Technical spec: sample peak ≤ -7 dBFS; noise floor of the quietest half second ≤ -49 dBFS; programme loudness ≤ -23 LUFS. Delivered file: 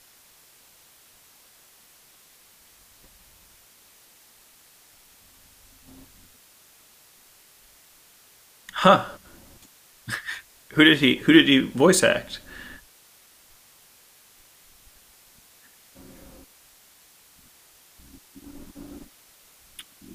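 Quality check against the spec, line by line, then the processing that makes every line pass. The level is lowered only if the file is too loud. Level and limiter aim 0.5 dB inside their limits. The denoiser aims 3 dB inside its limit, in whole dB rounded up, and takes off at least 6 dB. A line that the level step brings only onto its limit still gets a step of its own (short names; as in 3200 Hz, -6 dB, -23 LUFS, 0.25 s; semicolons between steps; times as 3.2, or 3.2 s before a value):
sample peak -1.5 dBFS: fail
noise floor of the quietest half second -55 dBFS: OK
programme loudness -19.0 LUFS: fail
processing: gain -4.5 dB; limiter -7.5 dBFS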